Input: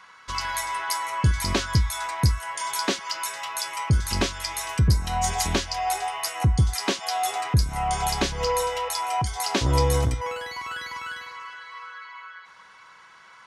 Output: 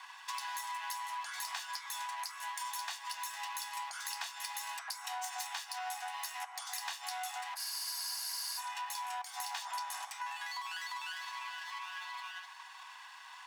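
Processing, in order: minimum comb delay 1.1 ms; steep high-pass 750 Hz 72 dB/oct; compressor 5:1, threshold -40 dBFS, peak gain reduction 16 dB; spectral freeze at 7.59, 1.00 s; gain +1 dB

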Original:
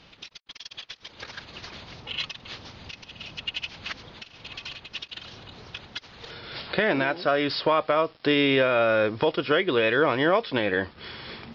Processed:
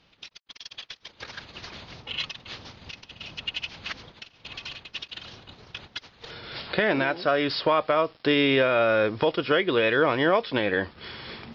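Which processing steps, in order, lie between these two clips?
gate -44 dBFS, range -9 dB

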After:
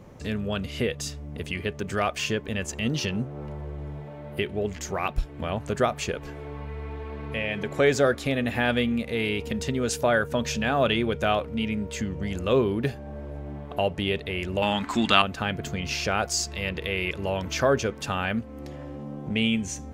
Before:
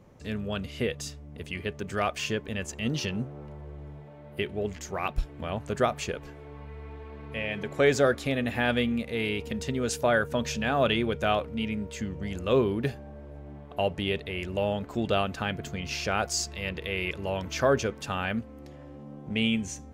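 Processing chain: 14.62–15.22 graphic EQ 125/250/500/1000/2000/4000/8000 Hz -7/+9/-11/+11/+10/+8/+11 dB; in parallel at +3 dB: compressor, threshold -39 dBFS, peak gain reduction 23 dB

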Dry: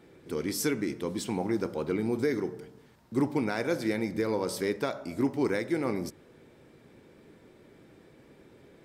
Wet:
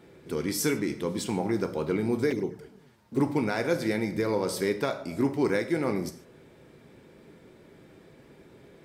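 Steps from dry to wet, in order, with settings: non-linear reverb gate 0.17 s falling, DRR 8.5 dB; 2.3–3.2 envelope flanger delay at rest 11.7 ms, full sweep at -27 dBFS; gain +2 dB

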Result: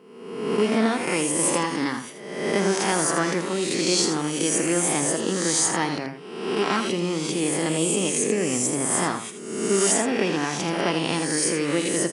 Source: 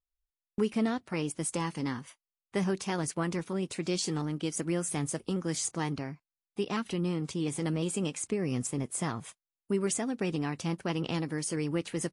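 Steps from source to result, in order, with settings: spectral swells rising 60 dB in 1.10 s; HPF 240 Hz 12 dB/oct; echo 81 ms -8.5 dB; gain +7.5 dB

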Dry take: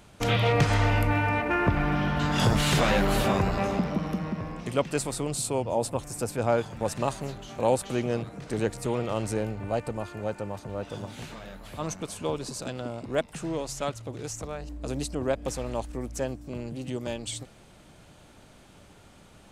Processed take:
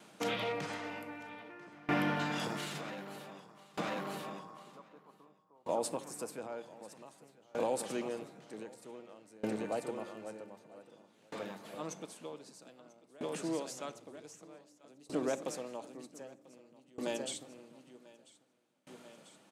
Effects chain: HPF 190 Hz 24 dB/oct; limiter -19.5 dBFS, peak gain reduction 8.5 dB; 3.4–5.69 ladder low-pass 1200 Hz, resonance 70%; feedback echo 0.992 s, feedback 27%, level -7.5 dB; reverb RT60 0.70 s, pre-delay 6 ms, DRR 12.5 dB; dB-ramp tremolo decaying 0.53 Hz, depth 27 dB; gain -1.5 dB

